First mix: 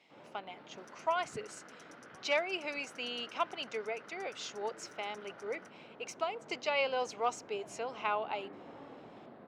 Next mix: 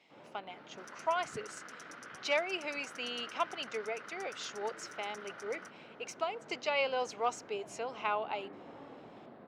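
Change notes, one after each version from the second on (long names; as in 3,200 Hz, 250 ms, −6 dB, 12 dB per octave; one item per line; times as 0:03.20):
second sound +6.5 dB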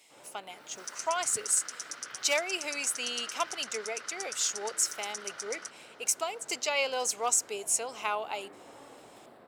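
first sound: add parametric band 190 Hz −7.5 dB 1.3 octaves
second sound: add low-pass with resonance 4,900 Hz, resonance Q 1.6
master: remove high-frequency loss of the air 260 metres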